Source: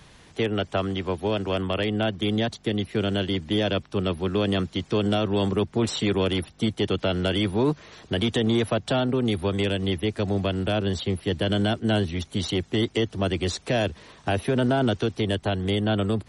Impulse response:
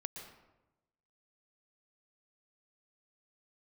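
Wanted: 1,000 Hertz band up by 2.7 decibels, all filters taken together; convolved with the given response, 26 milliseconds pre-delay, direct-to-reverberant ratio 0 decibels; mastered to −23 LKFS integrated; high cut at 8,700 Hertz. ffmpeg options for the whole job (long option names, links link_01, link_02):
-filter_complex "[0:a]lowpass=8700,equalizer=frequency=1000:width_type=o:gain=4,asplit=2[link_01][link_02];[1:a]atrim=start_sample=2205,adelay=26[link_03];[link_02][link_03]afir=irnorm=-1:irlink=0,volume=2dB[link_04];[link_01][link_04]amix=inputs=2:normalize=0,volume=-1.5dB"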